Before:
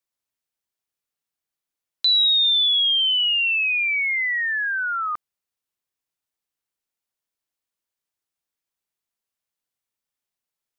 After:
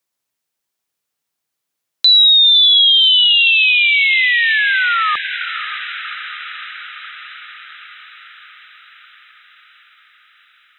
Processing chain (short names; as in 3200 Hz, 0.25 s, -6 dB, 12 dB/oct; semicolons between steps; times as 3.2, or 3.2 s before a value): HPF 97 Hz 12 dB/oct; on a send: diffused feedback echo 0.572 s, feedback 66%, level -11 dB; on the sum: gain +8.5 dB